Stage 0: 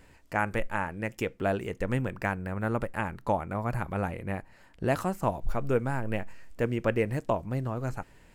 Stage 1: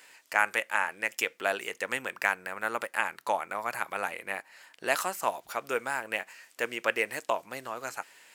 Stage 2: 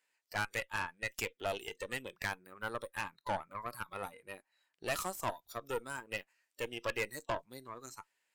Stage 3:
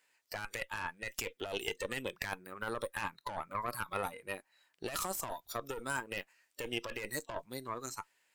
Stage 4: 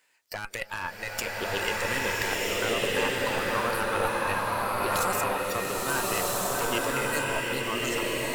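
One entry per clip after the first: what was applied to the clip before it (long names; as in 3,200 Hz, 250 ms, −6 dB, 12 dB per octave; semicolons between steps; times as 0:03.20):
high-pass filter 380 Hz 12 dB per octave; tilt shelving filter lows −9 dB; level +2 dB
noise reduction from a noise print of the clip's start 20 dB; tube saturation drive 27 dB, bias 0.75; level −1 dB
compressor whose output falls as the input rises −41 dBFS, ratio −1; level +3.5 dB
slow-attack reverb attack 1,320 ms, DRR −6 dB; level +5.5 dB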